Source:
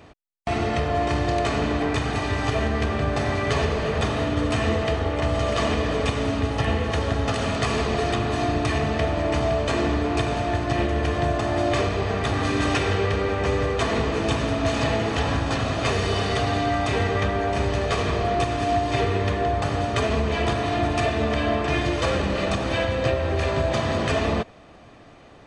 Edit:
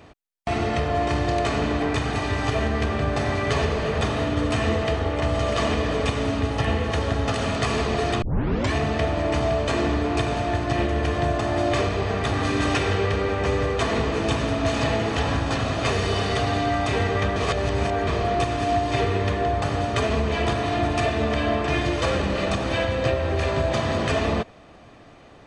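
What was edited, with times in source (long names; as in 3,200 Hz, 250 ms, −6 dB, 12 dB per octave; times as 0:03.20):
0:08.22: tape start 0.50 s
0:17.36–0:18.07: reverse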